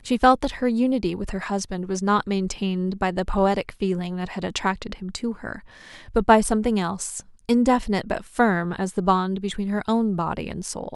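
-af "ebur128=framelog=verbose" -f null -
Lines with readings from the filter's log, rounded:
Integrated loudness:
  I:         -23.5 LUFS
  Threshold: -33.7 LUFS
Loudness range:
  LRA:         3.8 LU
  Threshold: -43.9 LUFS
  LRA low:   -25.9 LUFS
  LRA high:  -22.1 LUFS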